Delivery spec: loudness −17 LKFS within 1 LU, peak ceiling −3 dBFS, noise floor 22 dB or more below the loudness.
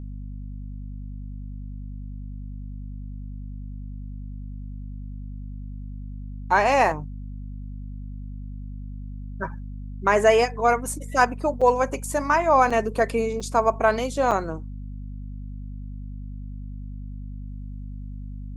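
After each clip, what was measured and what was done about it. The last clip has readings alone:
number of dropouts 4; longest dropout 5.4 ms; mains hum 50 Hz; hum harmonics up to 250 Hz; level of the hum −32 dBFS; integrated loudness −22.0 LKFS; sample peak −4.0 dBFS; target loudness −17.0 LKFS
→ repair the gap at 0:11.61/0:12.70/0:13.40/0:14.31, 5.4 ms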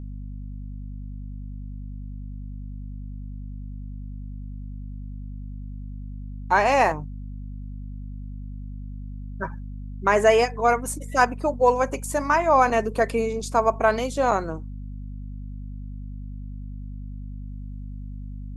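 number of dropouts 0; mains hum 50 Hz; hum harmonics up to 250 Hz; level of the hum −32 dBFS
→ mains-hum notches 50/100/150/200/250 Hz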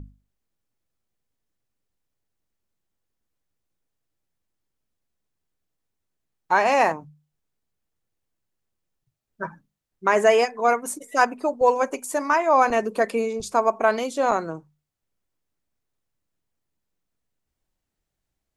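mains hum none found; integrated loudness −21.5 LKFS; sample peak −4.5 dBFS; target loudness −17.0 LKFS
→ level +4.5 dB
brickwall limiter −3 dBFS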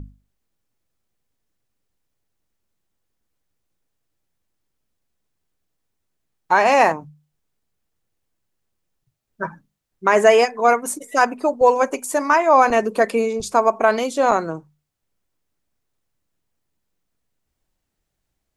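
integrated loudness −17.5 LKFS; sample peak −3.0 dBFS; background noise floor −78 dBFS

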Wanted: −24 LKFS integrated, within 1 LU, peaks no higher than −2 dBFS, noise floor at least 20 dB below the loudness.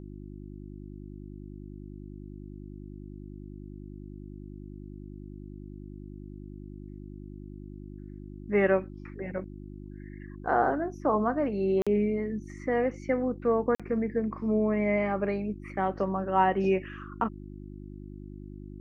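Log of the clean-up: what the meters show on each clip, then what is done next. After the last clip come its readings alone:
number of dropouts 2; longest dropout 46 ms; mains hum 50 Hz; hum harmonics up to 350 Hz; level of the hum −41 dBFS; integrated loudness −28.5 LKFS; sample peak −11.0 dBFS; target loudness −24.0 LKFS
→ repair the gap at 0:11.82/0:13.75, 46 ms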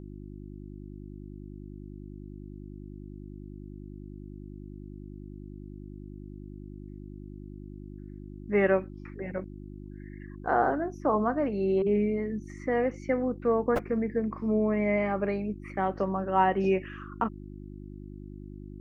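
number of dropouts 0; mains hum 50 Hz; hum harmonics up to 350 Hz; level of the hum −41 dBFS
→ hum removal 50 Hz, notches 7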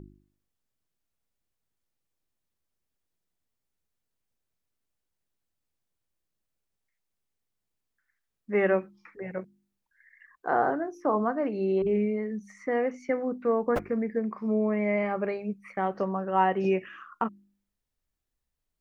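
mains hum none found; integrated loudness −28.5 LKFS; sample peak −11.5 dBFS; target loudness −24.0 LKFS
→ level +4.5 dB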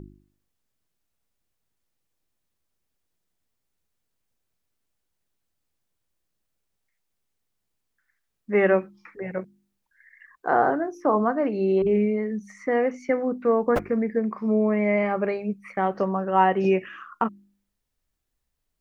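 integrated loudness −24.0 LKFS; sample peak −7.0 dBFS; background noise floor −79 dBFS

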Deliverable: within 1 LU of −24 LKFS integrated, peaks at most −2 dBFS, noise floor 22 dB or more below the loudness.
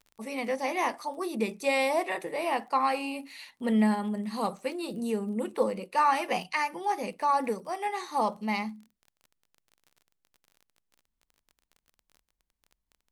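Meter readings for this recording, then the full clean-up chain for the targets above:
crackle rate 27 per second; integrated loudness −29.5 LKFS; sample peak −13.5 dBFS; target loudness −24.0 LKFS
→ click removal
level +5.5 dB

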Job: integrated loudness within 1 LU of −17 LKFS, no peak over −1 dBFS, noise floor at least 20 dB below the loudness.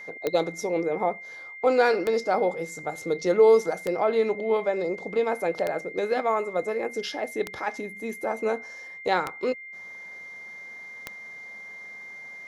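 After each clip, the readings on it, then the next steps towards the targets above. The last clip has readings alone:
number of clicks 7; interfering tone 2,100 Hz; level of the tone −39 dBFS; integrated loudness −26.0 LKFS; sample peak −8.5 dBFS; target loudness −17.0 LKFS
→ click removal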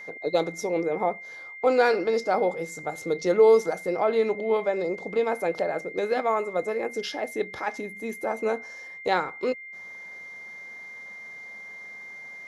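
number of clicks 0; interfering tone 2,100 Hz; level of the tone −39 dBFS
→ notch filter 2,100 Hz, Q 30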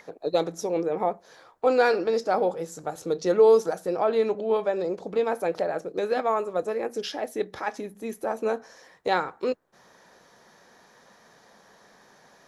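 interfering tone none found; integrated loudness −26.0 LKFS; sample peak −8.5 dBFS; target loudness −17.0 LKFS
→ level +9 dB
brickwall limiter −1 dBFS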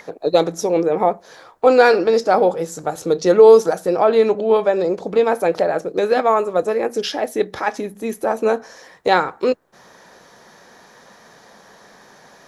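integrated loudness −17.5 LKFS; sample peak −1.0 dBFS; background noise floor −48 dBFS

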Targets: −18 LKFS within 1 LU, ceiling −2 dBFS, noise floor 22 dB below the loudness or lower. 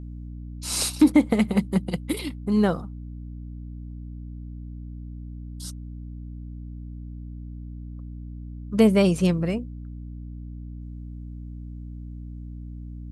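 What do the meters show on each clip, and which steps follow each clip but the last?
mains hum 60 Hz; hum harmonics up to 300 Hz; level of the hum −34 dBFS; integrated loudness −23.0 LKFS; sample peak −6.0 dBFS; target loudness −18.0 LKFS
→ mains-hum notches 60/120/180/240/300 Hz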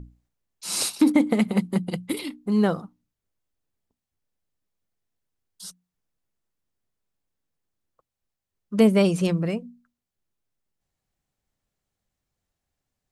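mains hum none found; integrated loudness −23.0 LKFS; sample peak −8.0 dBFS; target loudness −18.0 LKFS
→ level +5 dB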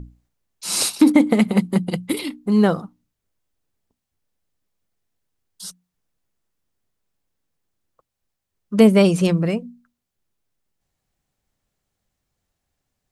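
integrated loudness −18.0 LKFS; sample peak −3.0 dBFS; background noise floor −81 dBFS

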